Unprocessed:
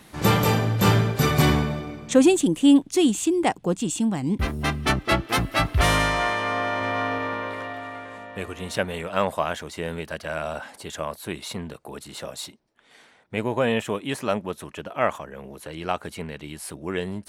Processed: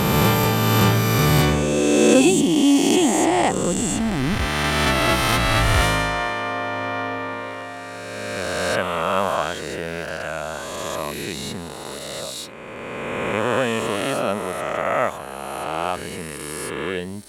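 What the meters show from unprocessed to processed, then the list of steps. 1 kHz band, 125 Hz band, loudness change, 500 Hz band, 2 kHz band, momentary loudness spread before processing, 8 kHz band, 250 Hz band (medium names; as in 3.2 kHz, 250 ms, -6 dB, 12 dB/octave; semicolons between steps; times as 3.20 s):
+4.0 dB, +2.5 dB, +3.0 dB, +4.0 dB, +4.0 dB, 17 LU, +6.5 dB, +2.5 dB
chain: reverse spectral sustain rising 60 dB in 2.94 s; trim -1.5 dB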